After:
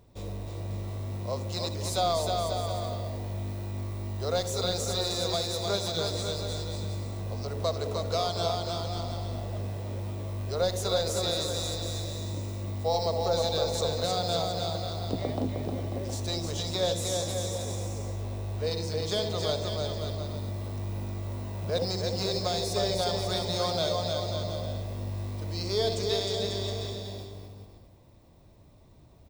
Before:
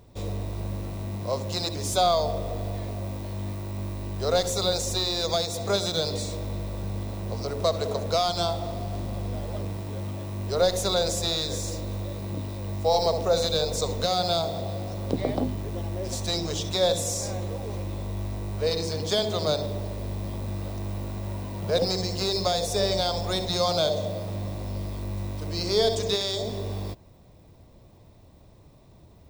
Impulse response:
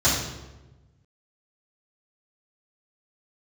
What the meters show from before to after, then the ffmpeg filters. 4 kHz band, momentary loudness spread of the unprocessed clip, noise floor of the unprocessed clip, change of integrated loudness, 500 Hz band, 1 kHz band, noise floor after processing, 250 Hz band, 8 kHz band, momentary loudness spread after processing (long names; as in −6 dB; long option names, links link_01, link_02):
−3.5 dB, 10 LU, −52 dBFS, −3.0 dB, −3.5 dB, −3.5 dB, −54 dBFS, −4.0 dB, −3.5 dB, 8 LU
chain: -af "aecho=1:1:310|542.5|716.9|847.7|945.7:0.631|0.398|0.251|0.158|0.1,volume=-5.5dB"